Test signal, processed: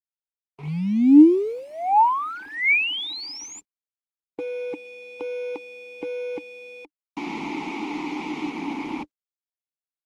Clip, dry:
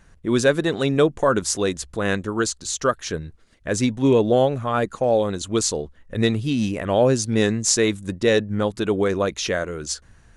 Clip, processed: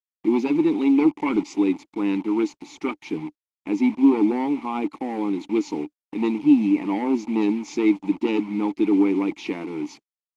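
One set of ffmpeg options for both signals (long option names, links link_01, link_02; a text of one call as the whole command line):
ffmpeg -i in.wav -filter_complex "[0:a]asplit=2[link_01][link_02];[link_02]aeval=exprs='0.668*sin(PI/2*3.55*val(0)/0.668)':channel_layout=same,volume=-3.5dB[link_03];[link_01][link_03]amix=inputs=2:normalize=0,afftfilt=real='re*between(b*sr/4096,150,7300)':imag='im*between(b*sr/4096,150,7300)':win_size=4096:overlap=0.75,acrusher=bits=3:mix=0:aa=0.000001,asplit=3[link_04][link_05][link_06];[link_04]bandpass=frequency=300:width_type=q:width=8,volume=0dB[link_07];[link_05]bandpass=frequency=870:width_type=q:width=8,volume=-6dB[link_08];[link_06]bandpass=frequency=2240:width_type=q:width=8,volume=-9dB[link_09];[link_07][link_08][link_09]amix=inputs=3:normalize=0" -ar 48000 -c:a libopus -b:a 24k out.opus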